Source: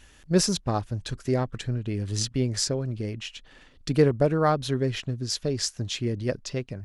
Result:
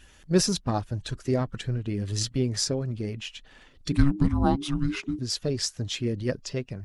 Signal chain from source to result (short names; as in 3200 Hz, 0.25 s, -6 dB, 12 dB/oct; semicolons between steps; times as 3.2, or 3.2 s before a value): bin magnitudes rounded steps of 15 dB; 3.92–5.19 frequency shift -420 Hz